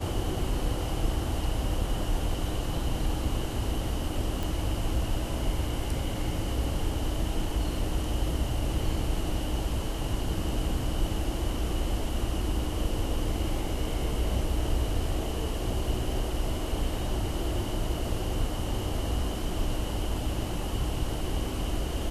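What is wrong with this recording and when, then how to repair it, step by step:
0:04.43: click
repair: click removal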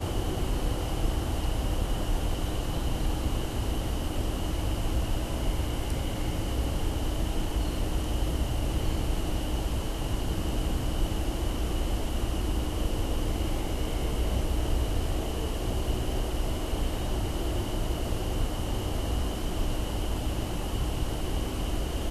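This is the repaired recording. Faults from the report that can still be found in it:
none of them is left

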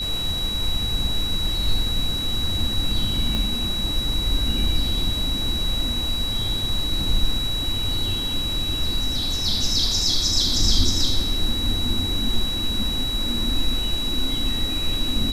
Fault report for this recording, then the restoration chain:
whistle 3,900 Hz −25 dBFS
0:03.35: click −12 dBFS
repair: click removal
notch filter 3,900 Hz, Q 30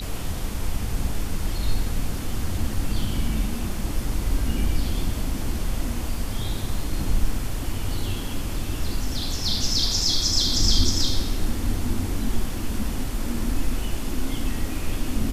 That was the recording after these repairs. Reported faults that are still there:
0:03.35: click

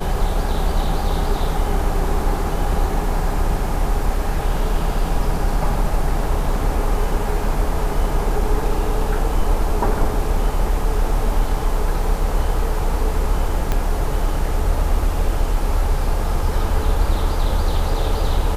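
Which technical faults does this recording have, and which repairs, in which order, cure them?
0:13.72: click −7 dBFS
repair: click removal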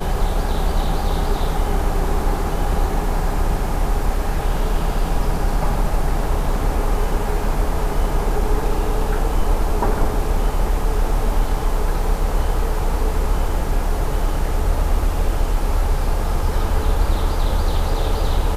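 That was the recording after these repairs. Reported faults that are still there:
0:13.72: click

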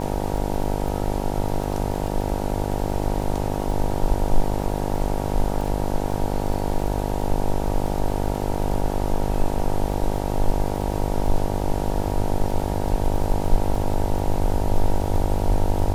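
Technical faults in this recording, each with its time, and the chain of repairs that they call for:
mains buzz 50 Hz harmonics 19 −26 dBFS
surface crackle 22 per second −28 dBFS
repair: click removal
hum removal 50 Hz, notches 19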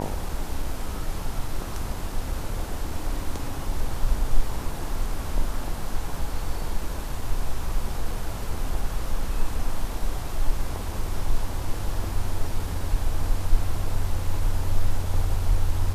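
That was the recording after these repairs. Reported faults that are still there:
none of them is left

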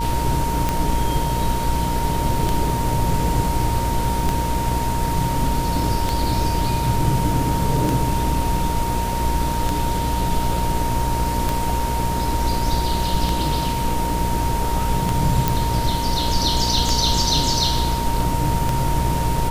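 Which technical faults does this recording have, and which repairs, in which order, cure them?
mains buzz 60 Hz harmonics 12 −25 dBFS
scratch tick 33 1/3 rpm −6 dBFS
whistle 930 Hz −24 dBFS
0:15.48: click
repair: click removal
hum removal 60 Hz, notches 12
notch filter 930 Hz, Q 30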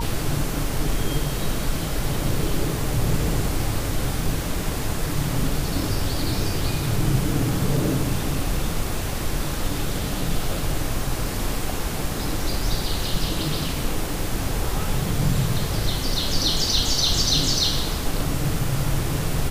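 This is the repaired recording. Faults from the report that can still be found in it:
none of them is left

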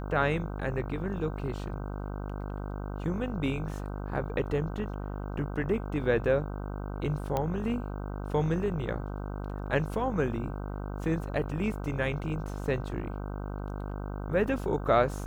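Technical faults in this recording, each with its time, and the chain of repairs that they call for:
mains buzz 50 Hz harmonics 31 −36 dBFS
0:07.37: click −16 dBFS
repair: click removal
hum removal 50 Hz, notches 31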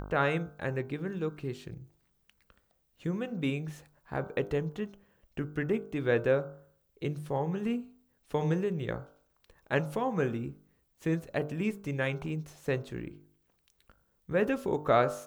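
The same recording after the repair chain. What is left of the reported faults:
none of them is left

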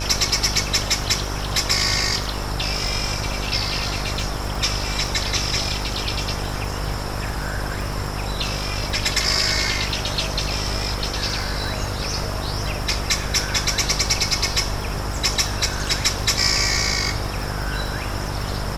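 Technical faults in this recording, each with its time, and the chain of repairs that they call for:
mains buzz 50 Hz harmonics 29 −28 dBFS
surface crackle 33 per second −27 dBFS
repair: click removal
hum removal 50 Hz, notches 29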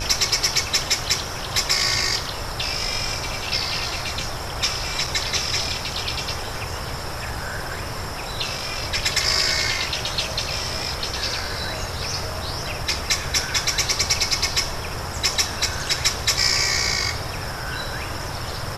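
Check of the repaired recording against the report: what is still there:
none of them is left

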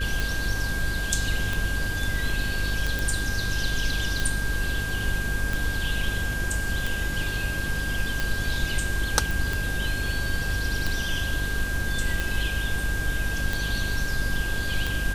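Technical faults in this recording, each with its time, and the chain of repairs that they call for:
mains buzz 50 Hz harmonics 11 −31 dBFS
scratch tick 45 rpm
whistle 1,600 Hz −30 dBFS
0:02.99: click
0:09.31: click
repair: click removal
hum removal 50 Hz, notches 11
notch filter 1,600 Hz, Q 30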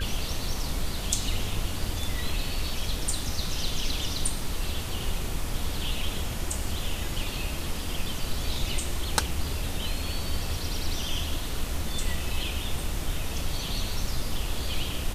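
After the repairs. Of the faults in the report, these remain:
none of them is left

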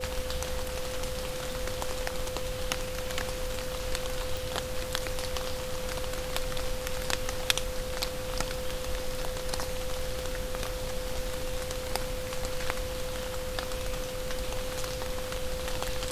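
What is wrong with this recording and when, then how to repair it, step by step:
surface crackle 23 per second −37 dBFS
whistle 510 Hz −36 dBFS
0:04.37: click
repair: click removal
notch filter 510 Hz, Q 30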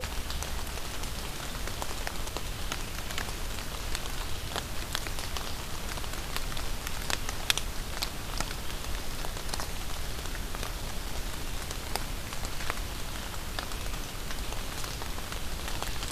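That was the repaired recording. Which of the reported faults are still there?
none of them is left

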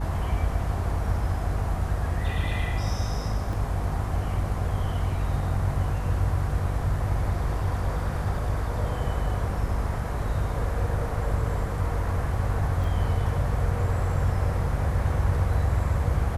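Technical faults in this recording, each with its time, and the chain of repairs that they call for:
mains hum 50 Hz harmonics 7 −30 dBFS
0:03.53: drop-out 2.3 ms
0:12.84: drop-out 2.5 ms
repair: hum removal 50 Hz, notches 7
repair the gap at 0:03.53, 2.3 ms
repair the gap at 0:12.84, 2.5 ms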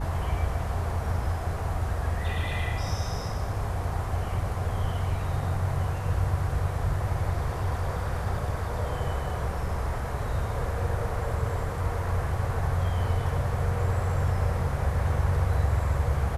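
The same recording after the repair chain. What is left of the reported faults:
none of them is left

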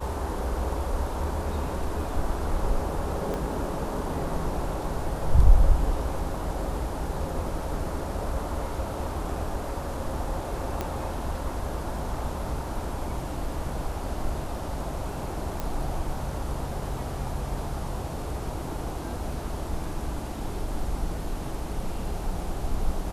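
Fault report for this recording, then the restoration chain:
0:03.34: click
0:10.81: click −15 dBFS
0:15.60: click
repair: click removal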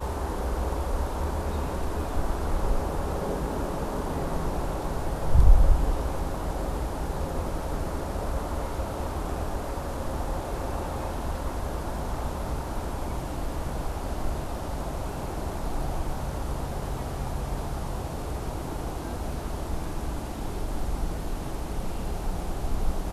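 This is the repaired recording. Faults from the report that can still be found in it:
0:03.34: click

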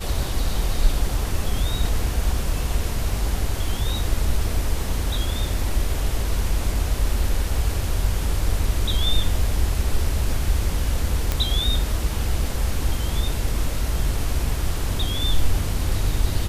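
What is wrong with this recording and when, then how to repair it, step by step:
0:11.32: click −7 dBFS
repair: click removal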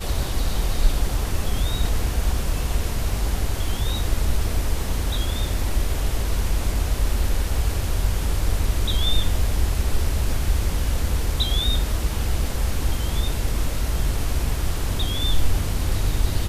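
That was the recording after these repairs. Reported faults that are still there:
none of them is left

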